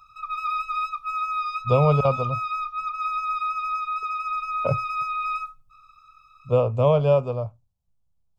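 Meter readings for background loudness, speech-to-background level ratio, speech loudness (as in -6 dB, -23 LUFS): -27.5 LUFS, 5.0 dB, -22.5 LUFS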